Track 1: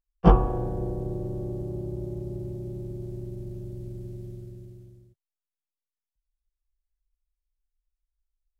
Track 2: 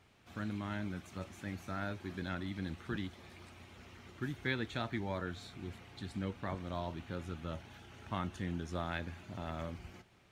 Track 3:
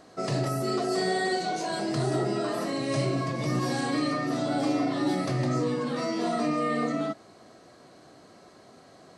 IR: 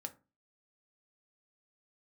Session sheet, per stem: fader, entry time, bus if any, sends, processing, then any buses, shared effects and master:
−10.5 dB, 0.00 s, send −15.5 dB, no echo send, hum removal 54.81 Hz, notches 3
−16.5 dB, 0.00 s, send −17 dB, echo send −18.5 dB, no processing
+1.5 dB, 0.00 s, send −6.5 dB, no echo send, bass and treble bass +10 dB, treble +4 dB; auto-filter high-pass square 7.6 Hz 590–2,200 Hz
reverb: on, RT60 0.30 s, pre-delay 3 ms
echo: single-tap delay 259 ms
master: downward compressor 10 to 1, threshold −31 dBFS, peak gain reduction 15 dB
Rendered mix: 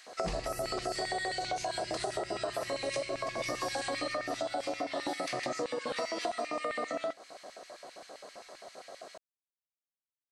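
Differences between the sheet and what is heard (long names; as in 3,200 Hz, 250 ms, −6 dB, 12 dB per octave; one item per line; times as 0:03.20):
stem 2: muted
reverb return −9.0 dB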